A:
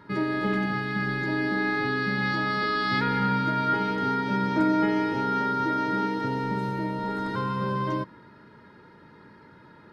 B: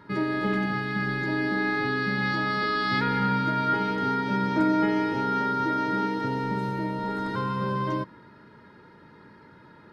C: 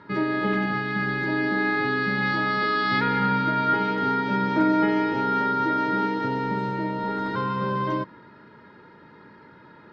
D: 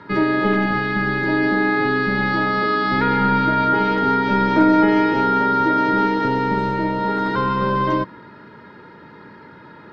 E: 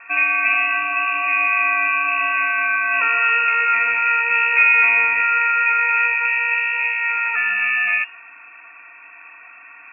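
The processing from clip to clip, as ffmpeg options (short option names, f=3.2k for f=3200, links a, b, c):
-af anull
-af "lowpass=4.4k,lowshelf=f=120:g=-7.5,volume=3dB"
-filter_complex "[0:a]acrossover=split=200|1200[a][b][c];[a]aeval=exprs='clip(val(0),-1,0.00841)':c=same[d];[c]alimiter=level_in=2.5dB:limit=-24dB:level=0:latency=1:release=39,volume=-2.5dB[e];[d][b][e]amix=inputs=3:normalize=0,volume=7dB"
-af "lowpass=f=2.4k:t=q:w=0.5098,lowpass=f=2.4k:t=q:w=0.6013,lowpass=f=2.4k:t=q:w=0.9,lowpass=f=2.4k:t=q:w=2.563,afreqshift=-2800"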